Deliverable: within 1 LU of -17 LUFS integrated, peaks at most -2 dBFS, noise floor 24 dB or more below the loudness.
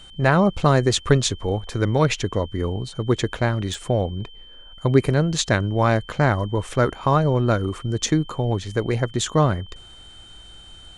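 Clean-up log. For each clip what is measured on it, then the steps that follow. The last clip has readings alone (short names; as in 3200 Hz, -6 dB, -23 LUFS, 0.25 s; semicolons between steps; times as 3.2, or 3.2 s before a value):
dropouts 1; longest dropout 1.9 ms; steady tone 3100 Hz; tone level -44 dBFS; loudness -21.5 LUFS; peak -2.5 dBFS; loudness target -17.0 LUFS
-> interpolate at 3.74, 1.9 ms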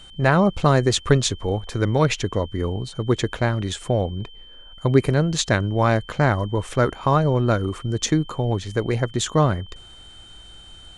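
dropouts 0; steady tone 3100 Hz; tone level -44 dBFS
-> notch 3100 Hz, Q 30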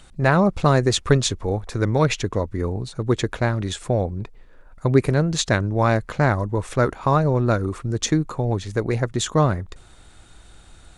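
steady tone none; loudness -21.5 LUFS; peak -2.5 dBFS; loudness target -17.0 LUFS
-> gain +4.5 dB; limiter -2 dBFS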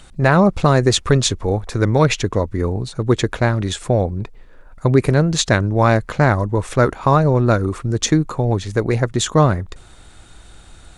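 loudness -17.5 LUFS; peak -2.0 dBFS; noise floor -43 dBFS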